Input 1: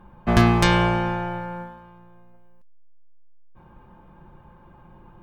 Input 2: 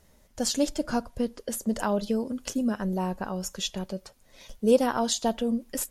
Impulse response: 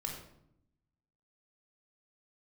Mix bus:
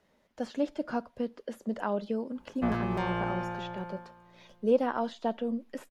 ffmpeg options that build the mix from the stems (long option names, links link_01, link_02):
-filter_complex "[0:a]alimiter=limit=-12dB:level=0:latency=1:release=183,adelay=2350,volume=-9dB[link_01];[1:a]acrossover=split=150 4100:gain=0.251 1 0.141[link_02][link_03][link_04];[link_02][link_03][link_04]amix=inputs=3:normalize=0,volume=-3.5dB[link_05];[link_01][link_05]amix=inputs=2:normalize=0,acrossover=split=2600[link_06][link_07];[link_07]acompressor=threshold=-54dB:ratio=4:attack=1:release=60[link_08];[link_06][link_08]amix=inputs=2:normalize=0,lowshelf=frequency=97:gain=-7"